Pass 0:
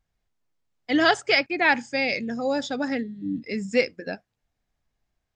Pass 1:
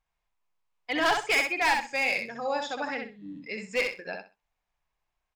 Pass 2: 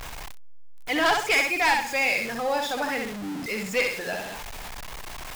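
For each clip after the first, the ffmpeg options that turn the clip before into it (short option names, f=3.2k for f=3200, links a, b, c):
-af "equalizer=f=100:t=o:w=0.67:g=-11,equalizer=f=250:t=o:w=0.67:g=-9,equalizer=f=1k:t=o:w=0.67:g=11,equalizer=f=2.5k:t=o:w=0.67:g=7,volume=14dB,asoftclip=hard,volume=-14dB,aecho=1:1:64|128|192:0.562|0.118|0.0248,volume=-6.5dB"
-af "aeval=exprs='val(0)+0.5*0.0266*sgn(val(0))':c=same,volume=1.5dB"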